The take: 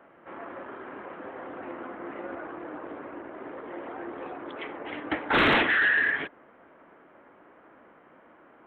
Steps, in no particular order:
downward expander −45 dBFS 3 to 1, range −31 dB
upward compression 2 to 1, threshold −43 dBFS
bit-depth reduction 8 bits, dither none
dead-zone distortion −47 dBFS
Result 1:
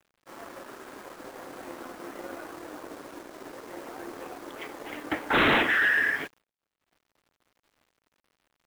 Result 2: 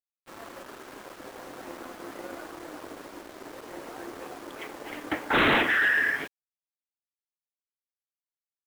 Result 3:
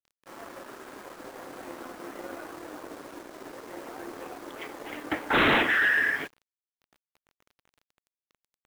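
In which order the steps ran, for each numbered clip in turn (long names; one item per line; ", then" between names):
bit-depth reduction, then dead-zone distortion, then downward expander, then upward compression
dead-zone distortion, then bit-depth reduction, then downward expander, then upward compression
downward expander, then upward compression, then bit-depth reduction, then dead-zone distortion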